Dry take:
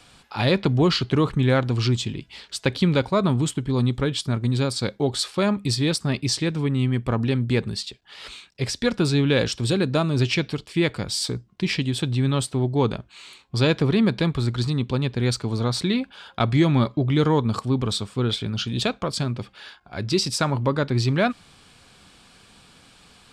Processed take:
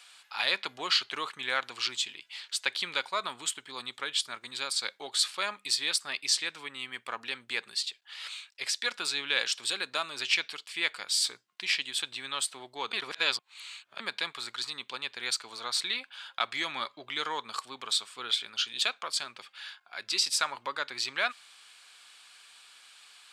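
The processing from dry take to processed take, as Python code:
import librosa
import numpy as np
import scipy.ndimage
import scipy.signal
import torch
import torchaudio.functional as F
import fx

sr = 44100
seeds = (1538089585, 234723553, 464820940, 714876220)

y = fx.edit(x, sr, fx.reverse_span(start_s=12.93, length_s=1.07), tone=tone)
y = scipy.signal.sosfilt(scipy.signal.butter(2, 1400.0, 'highpass', fs=sr, output='sos'), y)
y = fx.peak_eq(y, sr, hz=5400.0, db=-3.0, octaves=0.25)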